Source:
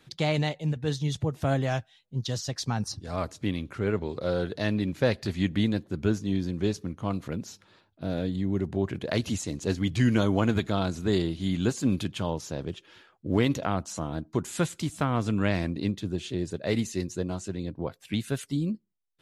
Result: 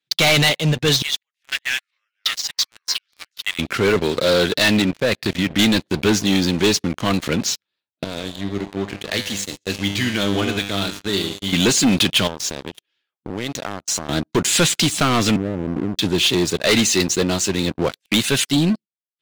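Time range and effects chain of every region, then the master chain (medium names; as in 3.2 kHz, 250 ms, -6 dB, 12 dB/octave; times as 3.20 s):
1.02–3.59 s: ladder high-pass 1.6 kHz, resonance 45% + ever faster or slower copies 374 ms, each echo -4 st, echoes 2, each echo -6 dB
4.82–5.59 s: low-pass 1.9 kHz 6 dB/octave + level held to a coarse grid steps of 10 dB
8.04–11.53 s: de-esser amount 35% + feedback comb 100 Hz, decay 1.3 s, mix 80%
12.27–14.09 s: dynamic bell 2.8 kHz, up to -7 dB, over -49 dBFS, Q 1.2 + compression 4:1, threshold -39 dBFS
15.36–15.99 s: Chebyshev low-pass 600 Hz, order 8 + compression 8:1, threshold -30 dBFS
whole clip: gate -44 dBFS, range -16 dB; frequency weighting D; waveshaping leveller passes 5; trim -3 dB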